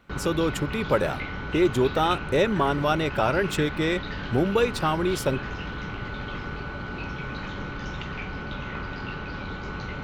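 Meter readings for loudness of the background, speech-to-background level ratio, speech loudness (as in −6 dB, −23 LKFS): −34.0 LKFS, 9.0 dB, −25.0 LKFS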